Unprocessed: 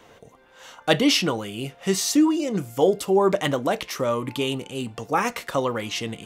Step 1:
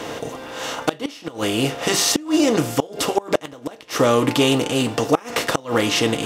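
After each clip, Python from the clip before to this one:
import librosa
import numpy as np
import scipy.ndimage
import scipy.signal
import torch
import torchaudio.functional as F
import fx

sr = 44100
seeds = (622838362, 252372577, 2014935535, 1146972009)

y = fx.bin_compress(x, sr, power=0.6)
y = fx.notch_comb(y, sr, f0_hz=190.0)
y = fx.gate_flip(y, sr, shuts_db=-9.0, range_db=-25)
y = y * 10.0 ** (5.0 / 20.0)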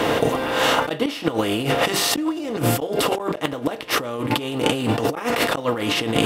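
y = fx.peak_eq(x, sr, hz=6300.0, db=-9.5, octaves=0.8)
y = fx.over_compress(y, sr, threshold_db=-27.0, ratio=-1.0)
y = y * 10.0 ** (5.0 / 20.0)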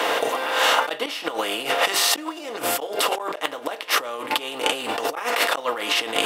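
y = scipy.signal.sosfilt(scipy.signal.butter(2, 630.0, 'highpass', fs=sr, output='sos'), x)
y = y * 10.0 ** (1.5 / 20.0)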